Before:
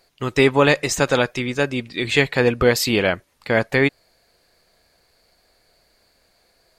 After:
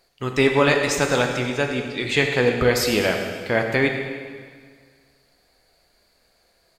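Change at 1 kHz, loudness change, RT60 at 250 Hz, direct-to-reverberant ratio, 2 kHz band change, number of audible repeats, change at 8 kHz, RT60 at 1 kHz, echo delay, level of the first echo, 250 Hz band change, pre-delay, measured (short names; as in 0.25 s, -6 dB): -1.0 dB, -1.5 dB, 1.8 s, 3.0 dB, -1.0 dB, 1, -1.5 dB, 1.8 s, 0.102 s, -12.5 dB, -2.0 dB, 7 ms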